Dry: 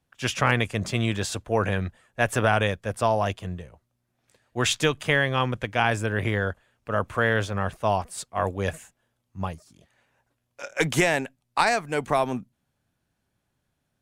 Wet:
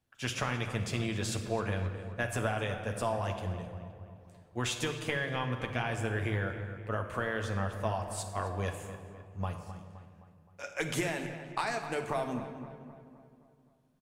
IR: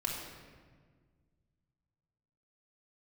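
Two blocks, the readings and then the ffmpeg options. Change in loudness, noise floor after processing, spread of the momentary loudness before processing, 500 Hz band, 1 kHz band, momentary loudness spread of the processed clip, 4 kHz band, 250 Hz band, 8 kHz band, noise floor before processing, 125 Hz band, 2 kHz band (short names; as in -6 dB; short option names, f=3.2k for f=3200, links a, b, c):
-9.5 dB, -63 dBFS, 12 LU, -9.5 dB, -10.0 dB, 14 LU, -9.5 dB, -7.5 dB, -7.5 dB, -77 dBFS, -6.5 dB, -10.0 dB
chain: -filter_complex "[0:a]acompressor=threshold=-24dB:ratio=6,asplit=2[a][b];[b]adelay=260,lowpass=f=3k:p=1,volume=-12dB,asplit=2[c][d];[d]adelay=260,lowpass=f=3k:p=1,volume=0.54,asplit=2[e][f];[f]adelay=260,lowpass=f=3k:p=1,volume=0.54,asplit=2[g][h];[h]adelay=260,lowpass=f=3k:p=1,volume=0.54,asplit=2[i][j];[j]adelay=260,lowpass=f=3k:p=1,volume=0.54,asplit=2[k][l];[l]adelay=260,lowpass=f=3k:p=1,volume=0.54[m];[a][c][e][g][i][k][m]amix=inputs=7:normalize=0,asplit=2[n][o];[1:a]atrim=start_sample=2205,highshelf=f=10k:g=6,adelay=9[p];[o][p]afir=irnorm=-1:irlink=0,volume=-8dB[q];[n][q]amix=inputs=2:normalize=0,volume=-6dB"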